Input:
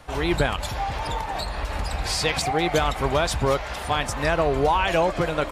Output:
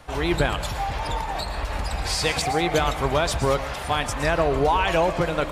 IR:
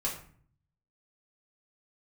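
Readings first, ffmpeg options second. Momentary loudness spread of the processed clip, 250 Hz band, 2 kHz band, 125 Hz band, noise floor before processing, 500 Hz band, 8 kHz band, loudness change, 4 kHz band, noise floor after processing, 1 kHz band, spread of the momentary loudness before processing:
8 LU, +0.5 dB, 0.0 dB, +0.5 dB, −33 dBFS, 0.0 dB, +0.5 dB, +0.5 dB, 0.0 dB, −31 dBFS, 0.0 dB, 8 LU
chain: -filter_complex "[0:a]asplit=2[link_01][link_02];[1:a]atrim=start_sample=2205,highshelf=frequency=7000:gain=9.5,adelay=112[link_03];[link_02][link_03]afir=irnorm=-1:irlink=0,volume=-18dB[link_04];[link_01][link_04]amix=inputs=2:normalize=0"

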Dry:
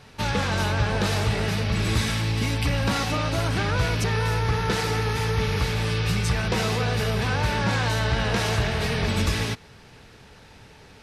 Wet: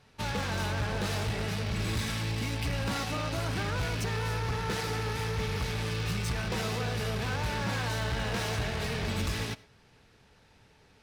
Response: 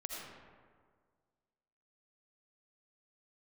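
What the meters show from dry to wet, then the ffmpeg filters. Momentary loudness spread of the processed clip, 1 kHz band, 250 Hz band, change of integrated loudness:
1 LU, −7.5 dB, −7.5 dB, −7.5 dB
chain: -filter_complex "[0:a]aeval=exprs='0.237*(cos(1*acos(clip(val(0)/0.237,-1,1)))-cos(1*PI/2))+0.0422*(cos(3*acos(clip(val(0)/0.237,-1,1)))-cos(3*PI/2))+0.0237*(cos(5*acos(clip(val(0)/0.237,-1,1)))-cos(5*PI/2))+0.0211*(cos(7*acos(clip(val(0)/0.237,-1,1)))-cos(7*PI/2))':channel_layout=same,volume=23.5dB,asoftclip=hard,volume=-23.5dB,asplit=2[link_01][link_02];[1:a]atrim=start_sample=2205,afade=type=out:start_time=0.17:duration=0.01,atrim=end_sample=7938[link_03];[link_02][link_03]afir=irnorm=-1:irlink=0,volume=-12.5dB[link_04];[link_01][link_04]amix=inputs=2:normalize=0,volume=-4dB"

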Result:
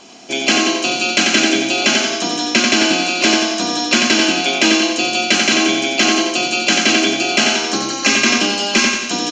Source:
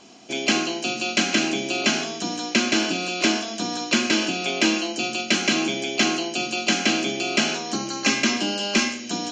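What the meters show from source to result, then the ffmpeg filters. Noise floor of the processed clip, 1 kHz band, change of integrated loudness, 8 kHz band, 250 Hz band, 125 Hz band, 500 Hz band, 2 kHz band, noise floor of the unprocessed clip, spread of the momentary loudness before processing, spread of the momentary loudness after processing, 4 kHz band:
−23 dBFS, +8.5 dB, +8.5 dB, +9.0 dB, +6.5 dB, +3.5 dB, +7.5 dB, +8.5 dB, −34 dBFS, 5 LU, 4 LU, +9.0 dB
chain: -af "equalizer=frequency=130:width_type=o:width=2.1:gain=-6,aecho=1:1:90|180|270|360|450|540|630:0.531|0.281|0.149|0.079|0.0419|0.0222|0.0118,alimiter=level_in=9dB:limit=-1dB:release=50:level=0:latency=1,volume=-1dB"

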